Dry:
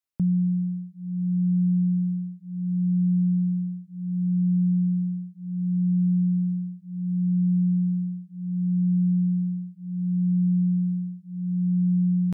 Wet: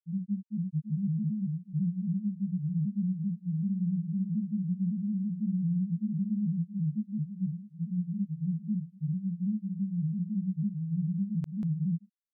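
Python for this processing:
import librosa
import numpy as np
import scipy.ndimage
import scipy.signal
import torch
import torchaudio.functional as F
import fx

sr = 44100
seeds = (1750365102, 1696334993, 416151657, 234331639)

y = fx.granulator(x, sr, seeds[0], grain_ms=100.0, per_s=18.0, spray_ms=912.0, spread_st=3)
y = F.gain(torch.from_numpy(y), -5.5).numpy()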